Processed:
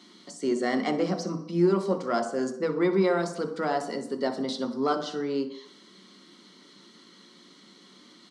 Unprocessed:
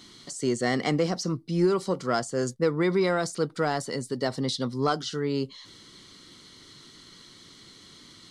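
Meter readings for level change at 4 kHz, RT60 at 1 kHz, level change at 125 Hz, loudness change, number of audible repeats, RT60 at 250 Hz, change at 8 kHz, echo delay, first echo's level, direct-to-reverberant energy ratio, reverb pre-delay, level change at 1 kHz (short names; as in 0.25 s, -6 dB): -4.5 dB, 0.75 s, -4.5 dB, -0.5 dB, 1, 0.60 s, -7.5 dB, 62 ms, -15.0 dB, 5.0 dB, 3 ms, 0.0 dB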